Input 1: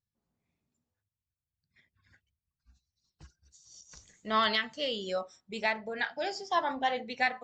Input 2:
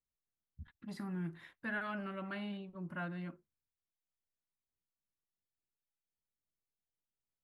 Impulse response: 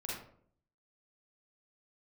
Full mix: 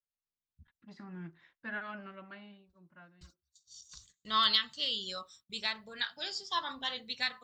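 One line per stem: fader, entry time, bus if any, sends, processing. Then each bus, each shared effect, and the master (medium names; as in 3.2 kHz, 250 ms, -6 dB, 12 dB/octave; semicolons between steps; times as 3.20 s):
-3.0 dB, 0.00 s, no send, gate -57 dBFS, range -22 dB; FFT filter 110 Hz 0 dB, 220 Hz -6 dB, 400 Hz -9 dB, 780 Hz -14 dB, 1.1 kHz +2 dB, 2.2 kHz -5 dB, 3.8 kHz +12 dB, 6.1 kHz +1 dB, 9.3 kHz +11 dB
+1.0 dB, 0.00 s, no send, steep low-pass 6.6 kHz; bass shelf 480 Hz -4.5 dB; upward expansion 1.5:1, over -53 dBFS; auto duck -15 dB, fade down 1.15 s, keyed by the first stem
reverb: none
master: none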